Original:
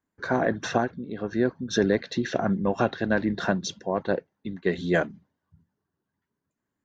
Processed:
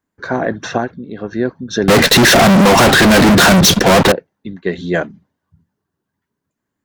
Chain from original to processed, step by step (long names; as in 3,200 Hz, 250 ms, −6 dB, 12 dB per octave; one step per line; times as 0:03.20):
0:01.88–0:04.12: fuzz pedal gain 48 dB, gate −56 dBFS
level +6 dB